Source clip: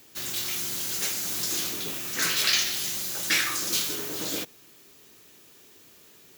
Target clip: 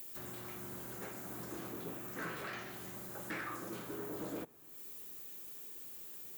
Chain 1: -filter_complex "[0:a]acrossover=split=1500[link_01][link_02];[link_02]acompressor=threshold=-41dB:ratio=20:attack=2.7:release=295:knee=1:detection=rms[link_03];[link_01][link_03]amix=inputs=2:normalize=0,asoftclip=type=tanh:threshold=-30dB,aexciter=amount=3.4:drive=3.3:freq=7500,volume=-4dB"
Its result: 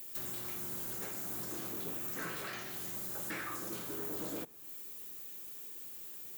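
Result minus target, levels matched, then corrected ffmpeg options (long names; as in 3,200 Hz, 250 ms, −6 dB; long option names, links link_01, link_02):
downward compressor: peak gain reduction −8 dB
-filter_complex "[0:a]acrossover=split=1500[link_01][link_02];[link_02]acompressor=threshold=-49.5dB:ratio=20:attack=2.7:release=295:knee=1:detection=rms[link_03];[link_01][link_03]amix=inputs=2:normalize=0,asoftclip=type=tanh:threshold=-30dB,aexciter=amount=3.4:drive=3.3:freq=7500,volume=-4dB"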